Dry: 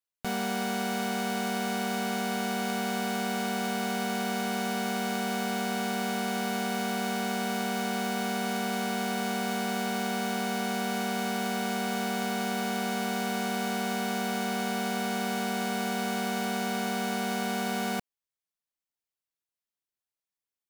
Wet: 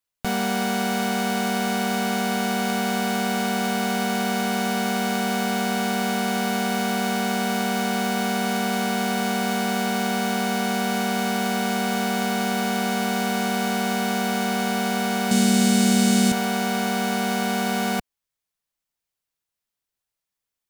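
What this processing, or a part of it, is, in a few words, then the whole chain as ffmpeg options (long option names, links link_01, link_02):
low shelf boost with a cut just above: -filter_complex "[0:a]asettb=1/sr,asplit=3[link_01][link_02][link_03];[link_01]atrim=end=15.314[link_04];[link_02]atrim=start=15.31:end=16.32,asetpts=PTS-STARTPTS,afade=type=in:duration=0.004:curve=qsin,afade=type=out:start_time=1.006:duration=0.004:curve=qsin,equalizer=frequency=125:width_type=o:width=1:gain=12,equalizer=frequency=250:width_type=o:width=1:gain=6,equalizer=frequency=1000:width_type=o:width=1:gain=-6,equalizer=frequency=4000:width_type=o:width=1:gain=4,equalizer=frequency=8000:width_type=o:width=1:gain=11[link_05];[link_03]atrim=start=16.316[link_06];[link_04][link_05]acrossfade=duration=0.004:curve1=hsin:curve2=qsin[link_07];[link_07][link_06]acrossfade=duration=0.004:curve1=qsin:curve2=hsin,lowshelf=frequency=94:gain=6.5,equalizer=frequency=330:width_type=o:width=0.57:gain=-2.5,volume=6.5dB"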